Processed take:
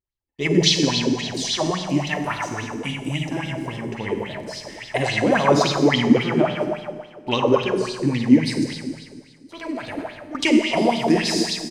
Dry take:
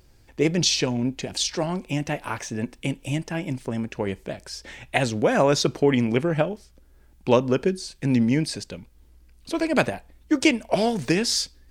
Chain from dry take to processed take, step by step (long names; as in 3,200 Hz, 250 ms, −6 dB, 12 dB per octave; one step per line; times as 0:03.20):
noise gate −42 dBFS, range −37 dB
flanger 0.4 Hz, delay 1.6 ms, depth 9.4 ms, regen −37%
far-end echo of a speakerphone 210 ms, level −9 dB
0:08.73–0:10.35: output level in coarse steps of 18 dB
comb filter 1 ms, depth 34%
four-comb reverb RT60 1.8 s, DRR 0.5 dB
auto-filter bell 3.6 Hz 260–3,900 Hz +16 dB
level −1 dB